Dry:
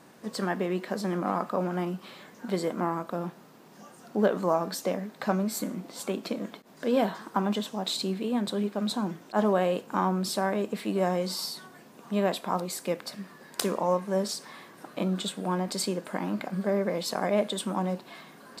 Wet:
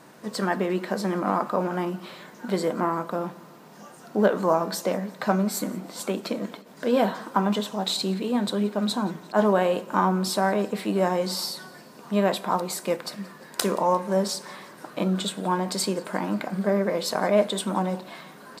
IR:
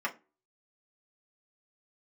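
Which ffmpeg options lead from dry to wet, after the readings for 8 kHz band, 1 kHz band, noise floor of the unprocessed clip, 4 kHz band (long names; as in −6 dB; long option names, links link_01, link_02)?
+4.0 dB, +5.0 dB, −53 dBFS, +4.0 dB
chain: -filter_complex "[0:a]aecho=1:1:175|350|525|700:0.0708|0.0418|0.0246|0.0145,asplit=2[link_01][link_02];[1:a]atrim=start_sample=2205,asetrate=32634,aresample=44100[link_03];[link_02][link_03]afir=irnorm=-1:irlink=0,volume=-16.5dB[link_04];[link_01][link_04]amix=inputs=2:normalize=0,volume=3dB"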